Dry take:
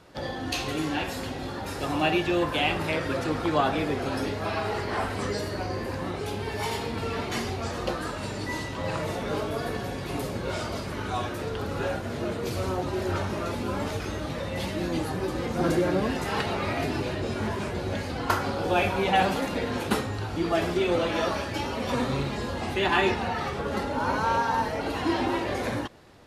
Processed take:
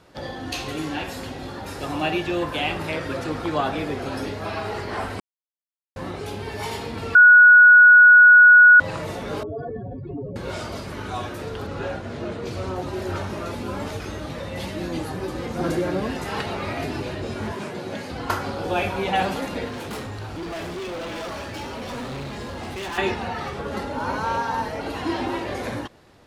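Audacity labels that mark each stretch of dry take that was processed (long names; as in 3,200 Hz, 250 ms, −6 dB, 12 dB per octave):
5.200000	5.960000	silence
7.150000	8.800000	beep over 1,460 Hz −6.5 dBFS
9.430000	10.360000	expanding power law on the bin magnitudes exponent 2.9
11.660000	12.760000	high-frequency loss of the air 54 metres
17.520000	18.110000	high-pass filter 130 Hz 24 dB per octave
19.680000	22.980000	hard clipping −29.5 dBFS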